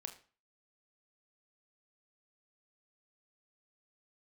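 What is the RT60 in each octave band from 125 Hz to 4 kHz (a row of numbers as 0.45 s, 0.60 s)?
0.40 s, 0.40 s, 0.35 s, 0.40 s, 0.35 s, 0.35 s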